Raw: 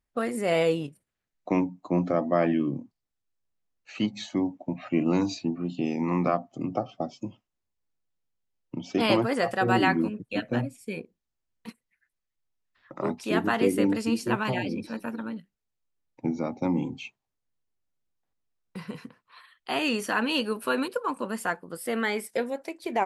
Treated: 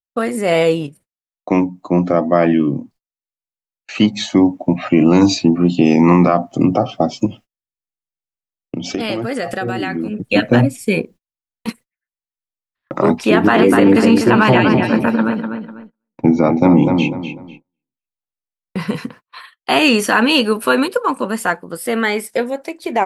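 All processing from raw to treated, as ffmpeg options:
ffmpeg -i in.wav -filter_complex "[0:a]asettb=1/sr,asplit=3[link_01][link_02][link_03];[link_01]atrim=end=7.264[link_04];[link_02]atrim=start=7.26:end=10.27,asetpts=PTS-STARTPTS,afade=type=in:duration=0.004:curve=qsin,afade=type=out:start_time=3.006:duration=0.004:curve=qsin,acompressor=threshold=-37dB:ratio=6:attack=3.2:release=140:knee=1:detection=peak,equalizer=frequency=1000:width=6:gain=-14[link_05];[link_03]atrim=start=10.266[link_06];[link_04][link_05]acrossfade=duration=0.004:curve1=hsin:curve2=qsin[link_07];[link_07][link_06]acrossfade=duration=0.004:curve1=qsin:curve2=hsin,asettb=1/sr,asplit=3[link_08][link_09][link_10];[link_08]atrim=end=13.184[link_11];[link_09]atrim=start=13.18:end=18.8,asetpts=PTS-STARTPTS,afade=type=in:duration=0.004:curve=qsin,afade=type=out:start_time=5.616:duration=0.004:curve=qsin,bass=frequency=250:gain=-1,treble=frequency=4000:gain=-9,asplit=2[link_12][link_13];[link_13]adelay=248,lowpass=frequency=3900:poles=1,volume=-7dB,asplit=2[link_14][link_15];[link_15]adelay=248,lowpass=frequency=3900:poles=1,volume=0.3,asplit=2[link_16][link_17];[link_17]adelay=248,lowpass=frequency=3900:poles=1,volume=0.3,asplit=2[link_18][link_19];[link_19]adelay=248,lowpass=frequency=3900:poles=1,volume=0.3[link_20];[link_12][link_14][link_16][link_18][link_20]amix=inputs=5:normalize=0,atrim=end_sample=247842[link_21];[link_10]atrim=start=18.796[link_22];[link_11][link_21]acrossfade=duration=0.004:curve1=hsin:curve2=qsin[link_23];[link_23][link_22]acrossfade=duration=0.004:curve1=qsin:curve2=hsin,agate=range=-34dB:threshold=-54dB:ratio=16:detection=peak,dynaudnorm=framelen=510:gausssize=17:maxgain=11.5dB,alimiter=level_in=10.5dB:limit=-1dB:release=50:level=0:latency=1,volume=-1dB" out.wav

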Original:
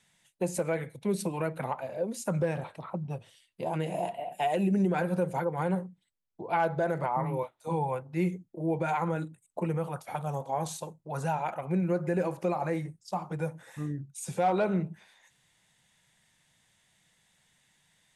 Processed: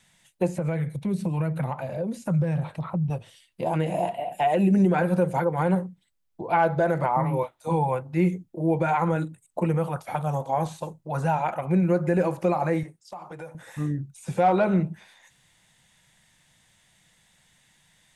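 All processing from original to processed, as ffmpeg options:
ffmpeg -i in.wav -filter_complex "[0:a]asettb=1/sr,asplit=3[link_01][link_02][link_03];[link_01]atrim=end=0.584[link_04];[link_02]atrim=start=0.58:end=3.1,asetpts=PTS-STARTPTS,afade=type=in:duration=0.004:curve=qsin,afade=type=out:start_time=2.516:duration=0.004:curve=qsin,equalizer=frequency=150:width=1.8:gain=12,acompressor=threshold=-35dB:ratio=2:attack=3.2:release=140:knee=1:detection=peak[link_05];[link_03]atrim=start=3.096[link_06];[link_04][link_05]acrossfade=duration=0.004:curve1=hsin:curve2=qsin[link_07];[link_07][link_06]acrossfade=duration=0.004:curve1=qsin:curve2=hsin,asettb=1/sr,asplit=3[link_08][link_09][link_10];[link_08]atrim=end=12.834[link_11];[link_09]atrim=start=12.83:end=13.55,asetpts=PTS-STARTPTS,afade=type=in:duration=0.004:curve=qsin,afade=type=out:start_time=0.716:duration=0.004:curve=qsin,bass=frequency=250:gain=-14,treble=frequency=4000:gain=-3,acompressor=threshold=-42dB:ratio=4:attack=3.2:release=140:knee=1:detection=peak[link_12];[link_10]atrim=start=13.546[link_13];[link_11][link_12]acrossfade=duration=0.004:curve1=hsin:curve2=qsin[link_14];[link_14][link_13]acrossfade=duration=0.004:curve1=qsin:curve2=hsin,acrossover=split=2800[link_15][link_16];[link_16]acompressor=threshold=-53dB:ratio=4:attack=1:release=60[link_17];[link_15][link_17]amix=inputs=2:normalize=0,lowshelf=frequency=66:gain=6.5,bandreject=frequency=420:width=14,volume=6dB" out.wav

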